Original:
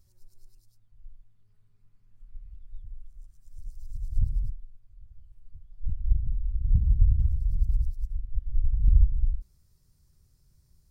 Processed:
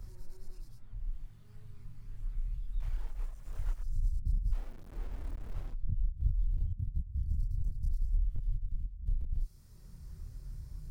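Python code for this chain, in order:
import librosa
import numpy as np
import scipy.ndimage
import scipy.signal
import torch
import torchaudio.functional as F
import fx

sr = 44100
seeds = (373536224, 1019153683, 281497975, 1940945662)

y = fx.block_float(x, sr, bits=5, at=(2.8, 3.8))
y = fx.highpass(y, sr, hz=41.0, slope=6)
y = fx.low_shelf(y, sr, hz=69.0, db=5.5)
y = fx.over_compress(y, sr, threshold_db=-28.0, ratio=-0.5)
y = fx.quant_dither(y, sr, seeds[0], bits=8, dither='none', at=(4.51, 5.7), fade=0.02)
y = fx.chorus_voices(y, sr, voices=4, hz=0.54, base_ms=28, depth_ms=4.6, mix_pct=55)
y = fx.band_squash(y, sr, depth_pct=70)
y = F.gain(torch.from_numpy(y), -1.0).numpy()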